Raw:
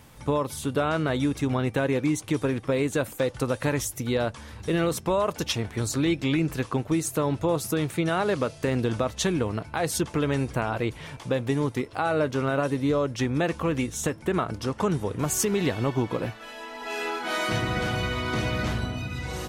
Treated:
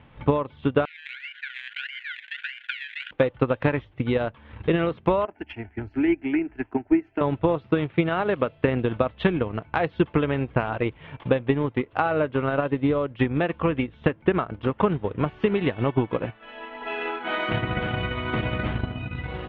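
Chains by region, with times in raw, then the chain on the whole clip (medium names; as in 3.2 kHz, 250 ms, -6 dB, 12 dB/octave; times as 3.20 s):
0.85–3.11 s: decimation with a swept rate 24×, swing 60% 1.6 Hz + brick-wall FIR high-pass 1.4 kHz + decay stretcher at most 52 dB/s
5.25–7.21 s: static phaser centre 760 Hz, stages 8 + three bands expanded up and down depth 70%
whole clip: steep low-pass 3.3 kHz 48 dB/octave; transient shaper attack +7 dB, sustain -8 dB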